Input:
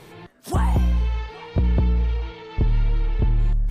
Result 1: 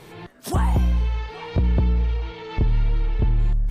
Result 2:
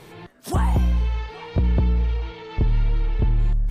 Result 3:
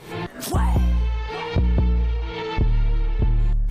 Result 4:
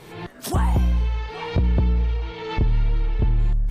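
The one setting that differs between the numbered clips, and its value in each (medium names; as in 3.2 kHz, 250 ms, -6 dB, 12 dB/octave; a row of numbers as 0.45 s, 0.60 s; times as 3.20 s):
recorder AGC, rising by: 14 dB/s, 5.1 dB/s, 89 dB/s, 35 dB/s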